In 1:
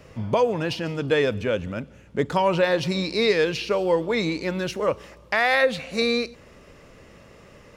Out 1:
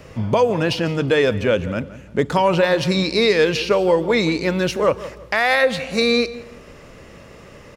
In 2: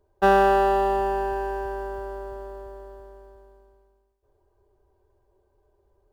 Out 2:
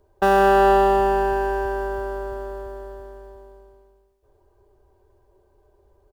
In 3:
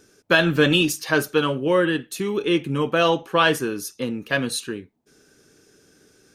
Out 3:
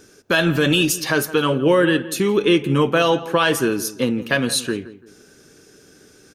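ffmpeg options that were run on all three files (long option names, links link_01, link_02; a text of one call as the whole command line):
ffmpeg -i in.wav -filter_complex "[0:a]acrossover=split=6000[link_01][link_02];[link_01]alimiter=limit=-13.5dB:level=0:latency=1:release=189[link_03];[link_03][link_02]amix=inputs=2:normalize=0,asplit=2[link_04][link_05];[link_05]adelay=169,lowpass=frequency=1800:poles=1,volume=-15dB,asplit=2[link_06][link_07];[link_07]adelay=169,lowpass=frequency=1800:poles=1,volume=0.33,asplit=2[link_08][link_09];[link_09]adelay=169,lowpass=frequency=1800:poles=1,volume=0.33[link_10];[link_04][link_06][link_08][link_10]amix=inputs=4:normalize=0,volume=6.5dB" out.wav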